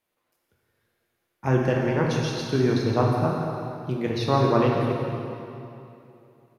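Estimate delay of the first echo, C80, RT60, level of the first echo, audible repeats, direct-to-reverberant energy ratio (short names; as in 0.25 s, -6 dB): 0.17 s, 1.0 dB, 2.8 s, -10.5 dB, 1, -2.5 dB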